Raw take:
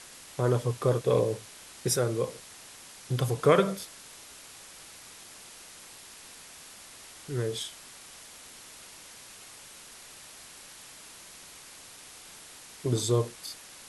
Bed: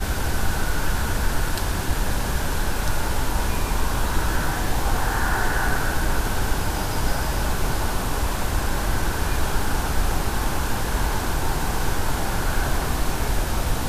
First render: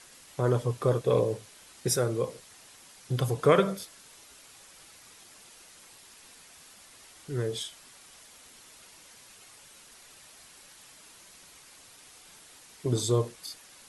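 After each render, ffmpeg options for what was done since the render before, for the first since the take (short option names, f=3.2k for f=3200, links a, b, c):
-af "afftdn=nr=6:nf=-49"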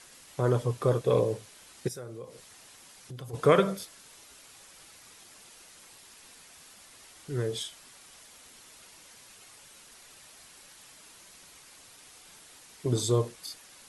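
-filter_complex "[0:a]asplit=3[a][b][c];[a]afade=t=out:st=1.87:d=0.02[d];[b]acompressor=threshold=-45dB:ratio=2.5:attack=3.2:release=140:knee=1:detection=peak,afade=t=in:st=1.87:d=0.02,afade=t=out:st=3.33:d=0.02[e];[c]afade=t=in:st=3.33:d=0.02[f];[d][e][f]amix=inputs=3:normalize=0"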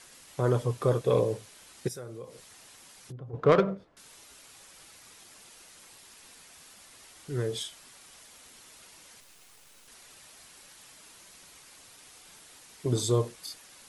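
-filter_complex "[0:a]asettb=1/sr,asplit=3[a][b][c];[a]atrim=end=3.124[d];[b]atrim=start=3.12:end=3.97,asetpts=PTS-STARTPTS,afade=t=in:d=0.004:c=qsin,afade=t=out:st=0.846:d=0.004:c=qsin,adynamicsmooth=sensitivity=1:basefreq=970[e];[c]atrim=start=3.966[f];[d][e]acrossfade=d=0.004:c1=hsin:c2=qsin[g];[g][f]acrossfade=d=0.004:c1=qsin:c2=hsin,asettb=1/sr,asplit=3[h][i][j];[h]atrim=end=9.204[k];[i]atrim=start=9.2:end=9.88,asetpts=PTS-STARTPTS,afade=t=in:d=0.004:c=qsin,afade=t=out:st=0.676:d=0.004:c=qsin,acrusher=bits=7:dc=4:mix=0:aa=0.000001[l];[j]atrim=start=9.876[m];[k][l]acrossfade=d=0.004:c1=hsin:c2=qsin[n];[n][m]acrossfade=d=0.004:c1=qsin:c2=hsin"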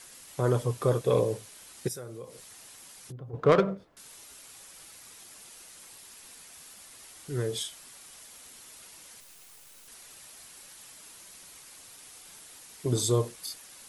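-af "highshelf=f=9.2k:g=9.5"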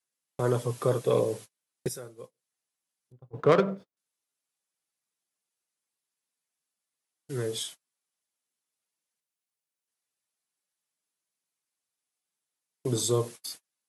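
-af "highpass=f=120:w=0.5412,highpass=f=120:w=1.3066,agate=range=-38dB:threshold=-41dB:ratio=16:detection=peak"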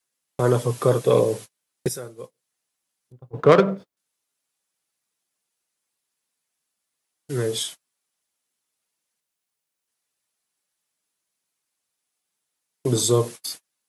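-af "volume=7dB"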